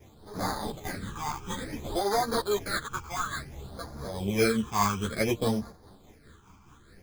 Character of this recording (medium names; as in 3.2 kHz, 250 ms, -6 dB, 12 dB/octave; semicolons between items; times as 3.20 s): aliases and images of a low sample rate 2.8 kHz, jitter 0%; phasing stages 8, 0.57 Hz, lowest notch 530–2800 Hz; tremolo triangle 4.8 Hz, depth 50%; a shimmering, thickened sound